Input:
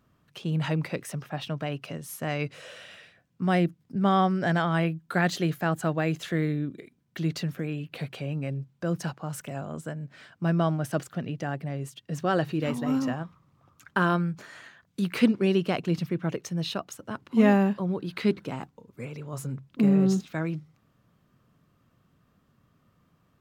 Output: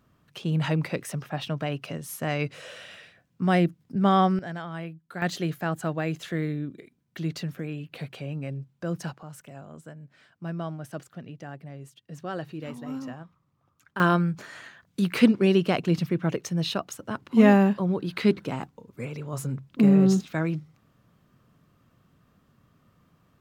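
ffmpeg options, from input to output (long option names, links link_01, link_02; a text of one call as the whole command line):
ffmpeg -i in.wav -af "asetnsamples=nb_out_samples=441:pad=0,asendcmd='4.39 volume volume -10.5dB;5.22 volume volume -2dB;9.23 volume volume -8.5dB;14 volume volume 3dB',volume=2dB" out.wav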